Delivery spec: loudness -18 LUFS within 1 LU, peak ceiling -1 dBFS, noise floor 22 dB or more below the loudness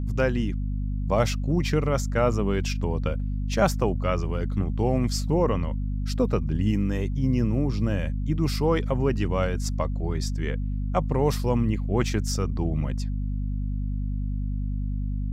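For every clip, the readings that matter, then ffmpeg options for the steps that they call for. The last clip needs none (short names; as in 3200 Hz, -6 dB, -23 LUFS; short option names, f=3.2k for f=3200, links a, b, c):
hum 50 Hz; harmonics up to 250 Hz; hum level -25 dBFS; loudness -26.5 LUFS; peak -8.0 dBFS; loudness target -18.0 LUFS
-> -af "bandreject=f=50:t=h:w=6,bandreject=f=100:t=h:w=6,bandreject=f=150:t=h:w=6,bandreject=f=200:t=h:w=6,bandreject=f=250:t=h:w=6"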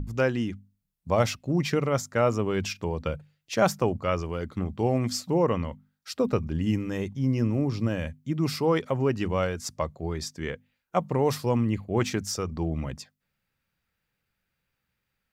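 hum none; loudness -28.0 LUFS; peak -9.0 dBFS; loudness target -18.0 LUFS
-> -af "volume=10dB,alimiter=limit=-1dB:level=0:latency=1"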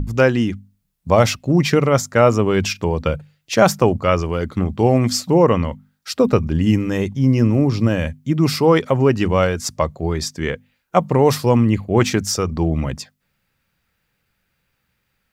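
loudness -18.0 LUFS; peak -1.0 dBFS; noise floor -71 dBFS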